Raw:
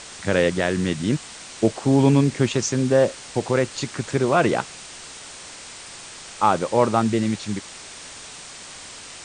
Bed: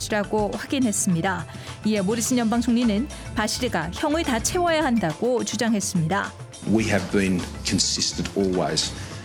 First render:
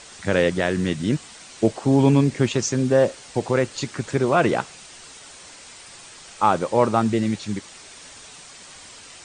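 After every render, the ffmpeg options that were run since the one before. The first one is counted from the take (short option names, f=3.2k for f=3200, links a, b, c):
-af "afftdn=nr=6:nf=-40"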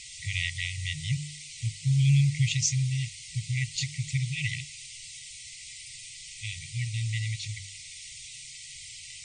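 -af "afftfilt=real='re*(1-between(b*sr/4096,160,1900))':imag='im*(1-between(b*sr/4096,160,1900))':win_size=4096:overlap=0.75,bandreject=f=49.4:t=h:w=4,bandreject=f=98.8:t=h:w=4,bandreject=f=148.2:t=h:w=4,bandreject=f=197.6:t=h:w=4"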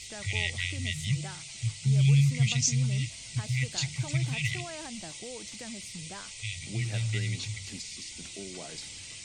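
-filter_complex "[1:a]volume=-21.5dB[a];[0:a][a]amix=inputs=2:normalize=0"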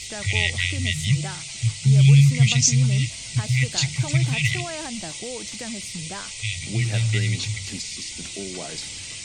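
-af "volume=8.5dB"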